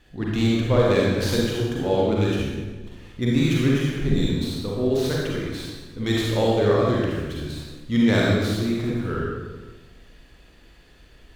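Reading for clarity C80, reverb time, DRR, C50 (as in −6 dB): 1.0 dB, 1.3 s, −4.5 dB, −2.0 dB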